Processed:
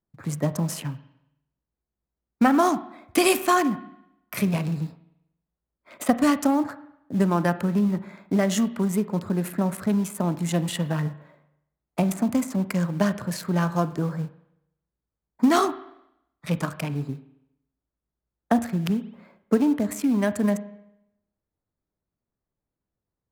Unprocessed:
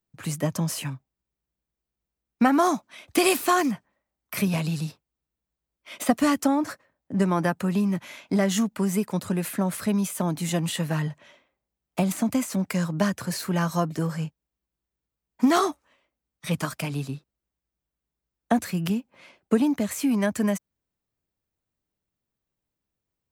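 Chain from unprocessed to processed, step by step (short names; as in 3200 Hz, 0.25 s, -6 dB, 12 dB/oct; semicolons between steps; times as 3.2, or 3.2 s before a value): Wiener smoothing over 15 samples; in parallel at -7.5 dB: short-mantissa float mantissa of 2-bit; on the sum: reverb RT60 0.80 s, pre-delay 34 ms, DRR 13 dB; gain -2 dB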